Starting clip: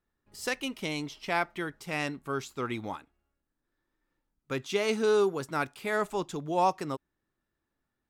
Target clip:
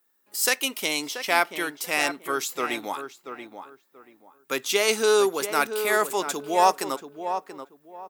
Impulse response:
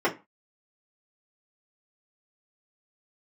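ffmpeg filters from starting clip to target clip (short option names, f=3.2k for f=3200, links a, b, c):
-filter_complex "[0:a]highpass=260,aemphasis=mode=production:type=bsi,asplit=2[a][b];[b]adelay=683,lowpass=f=1.7k:p=1,volume=-8.5dB,asplit=2[c][d];[d]adelay=683,lowpass=f=1.7k:p=1,volume=0.25,asplit=2[e][f];[f]adelay=683,lowpass=f=1.7k:p=1,volume=0.25[g];[c][e][g]amix=inputs=3:normalize=0[h];[a][h]amix=inputs=2:normalize=0,volume=7dB"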